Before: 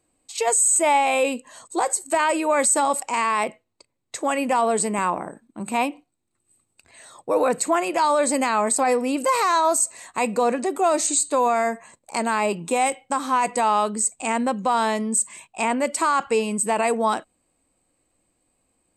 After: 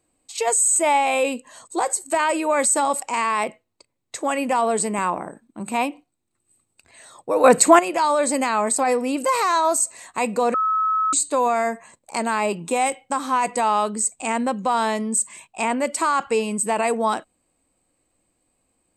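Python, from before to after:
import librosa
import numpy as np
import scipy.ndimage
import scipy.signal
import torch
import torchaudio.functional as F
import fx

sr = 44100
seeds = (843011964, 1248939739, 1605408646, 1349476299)

y = fx.edit(x, sr, fx.clip_gain(start_s=7.44, length_s=0.35, db=9.0),
    fx.bleep(start_s=10.54, length_s=0.59, hz=1290.0, db=-17.5), tone=tone)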